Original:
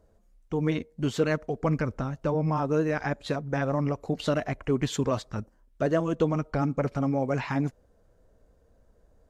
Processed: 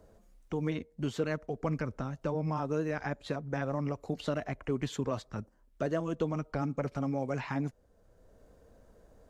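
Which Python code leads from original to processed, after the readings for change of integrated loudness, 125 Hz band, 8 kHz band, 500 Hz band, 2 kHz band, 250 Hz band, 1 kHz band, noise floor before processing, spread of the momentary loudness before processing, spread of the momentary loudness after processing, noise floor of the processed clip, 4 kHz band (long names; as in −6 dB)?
−6.5 dB, −6.5 dB, −8.0 dB, −6.5 dB, −6.0 dB, −6.5 dB, −6.5 dB, −64 dBFS, 5 LU, 5 LU, −66 dBFS, −7.0 dB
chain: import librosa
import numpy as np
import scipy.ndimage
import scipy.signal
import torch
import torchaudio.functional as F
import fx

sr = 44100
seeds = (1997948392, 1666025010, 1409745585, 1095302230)

y = fx.band_squash(x, sr, depth_pct=40)
y = y * 10.0 ** (-6.5 / 20.0)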